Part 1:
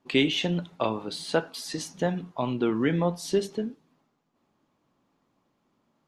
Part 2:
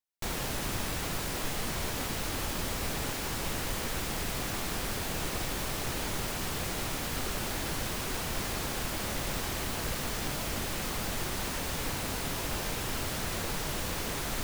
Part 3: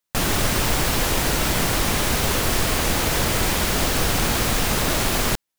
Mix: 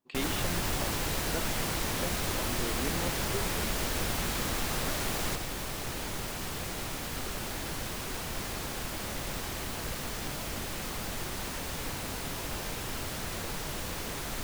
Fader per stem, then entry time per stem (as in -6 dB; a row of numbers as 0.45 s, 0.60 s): -13.5 dB, -2.5 dB, -12.5 dB; 0.00 s, 0.00 s, 0.00 s